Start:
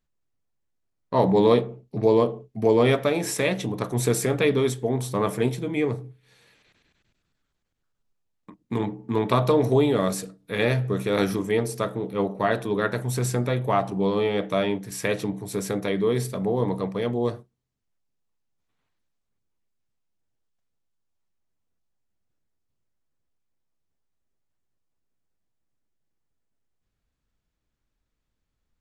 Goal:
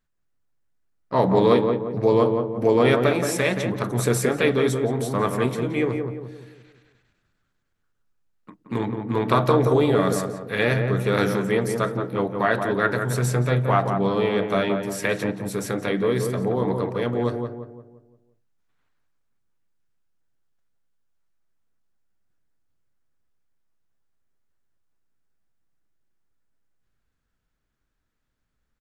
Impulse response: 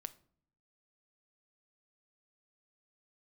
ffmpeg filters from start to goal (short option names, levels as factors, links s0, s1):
-filter_complex "[0:a]equalizer=f=1500:t=o:w=0.72:g=6.5,asplit=2[s0][s1];[s1]asetrate=52444,aresample=44100,atempo=0.840896,volume=0.158[s2];[s0][s2]amix=inputs=2:normalize=0,asplit=2[s3][s4];[s4]adelay=174,lowpass=f=1300:p=1,volume=0.596,asplit=2[s5][s6];[s6]adelay=174,lowpass=f=1300:p=1,volume=0.45,asplit=2[s7][s8];[s8]adelay=174,lowpass=f=1300:p=1,volume=0.45,asplit=2[s9][s10];[s10]adelay=174,lowpass=f=1300:p=1,volume=0.45,asplit=2[s11][s12];[s12]adelay=174,lowpass=f=1300:p=1,volume=0.45,asplit=2[s13][s14];[s14]adelay=174,lowpass=f=1300:p=1,volume=0.45[s15];[s5][s7][s9][s11][s13][s15]amix=inputs=6:normalize=0[s16];[s3][s16]amix=inputs=2:normalize=0"